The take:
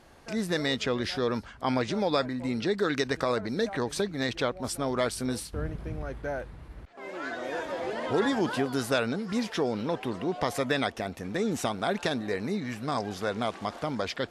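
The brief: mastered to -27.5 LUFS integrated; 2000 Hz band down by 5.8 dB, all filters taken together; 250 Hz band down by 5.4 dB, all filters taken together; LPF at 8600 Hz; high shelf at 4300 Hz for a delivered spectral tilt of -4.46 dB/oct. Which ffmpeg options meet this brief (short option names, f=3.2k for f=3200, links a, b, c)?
-af "lowpass=8.6k,equalizer=f=250:t=o:g=-6.5,equalizer=f=2k:t=o:g=-6,highshelf=f=4.3k:g=-8,volume=6dB"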